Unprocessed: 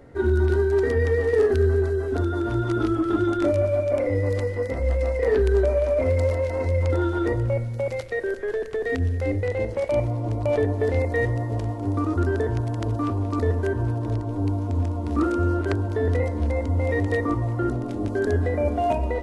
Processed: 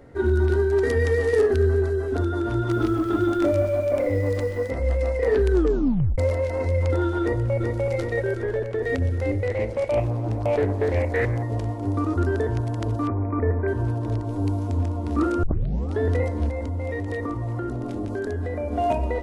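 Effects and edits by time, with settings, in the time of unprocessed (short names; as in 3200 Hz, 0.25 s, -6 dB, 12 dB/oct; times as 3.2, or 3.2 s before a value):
0.83–1.41 high shelf 3200 Hz +8.5 dB
2.56–4.7 lo-fi delay 0.129 s, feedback 35%, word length 7-bit, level -13 dB
5.51 tape stop 0.67 s
7.22–7.83 echo throw 0.38 s, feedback 70%, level -3.5 dB
8.43–8.83 high shelf 3800 Hz -7 dB
9.49–11.43 Doppler distortion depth 0.42 ms
13.07–13.68 brick-wall FIR low-pass 2500 Hz
14.24–14.75 high shelf 4200 Hz +5.5 dB
15.43 tape start 0.56 s
16.49–18.73 compressor, threshold -24 dBFS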